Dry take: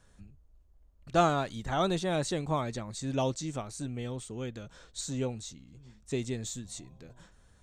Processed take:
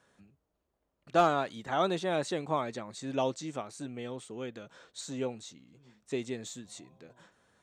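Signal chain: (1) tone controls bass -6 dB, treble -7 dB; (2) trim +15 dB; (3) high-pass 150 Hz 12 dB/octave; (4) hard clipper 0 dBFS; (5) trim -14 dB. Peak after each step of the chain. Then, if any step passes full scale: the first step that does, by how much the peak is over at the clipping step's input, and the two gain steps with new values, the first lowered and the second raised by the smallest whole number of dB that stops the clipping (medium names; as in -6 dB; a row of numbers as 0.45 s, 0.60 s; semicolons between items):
-13.0 dBFS, +2.0 dBFS, +3.5 dBFS, 0.0 dBFS, -14.0 dBFS; step 2, 3.5 dB; step 2 +11 dB, step 5 -10 dB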